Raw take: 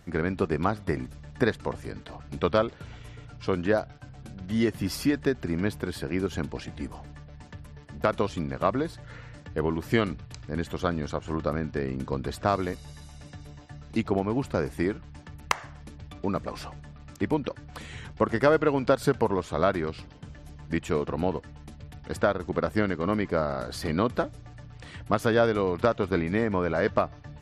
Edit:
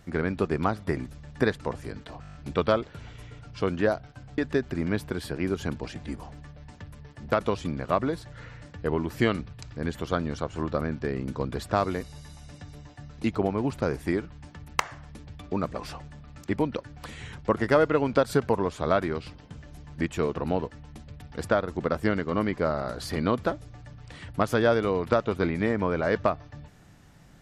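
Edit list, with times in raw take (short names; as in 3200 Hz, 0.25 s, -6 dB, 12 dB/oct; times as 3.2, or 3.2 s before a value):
2.21 stutter 0.02 s, 8 plays
4.24–5.1 cut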